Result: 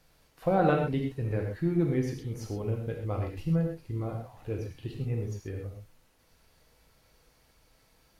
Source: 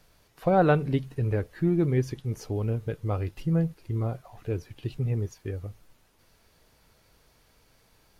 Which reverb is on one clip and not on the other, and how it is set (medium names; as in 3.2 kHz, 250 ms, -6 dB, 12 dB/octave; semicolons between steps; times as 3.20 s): gated-style reverb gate 150 ms flat, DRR 1 dB; trim -4.5 dB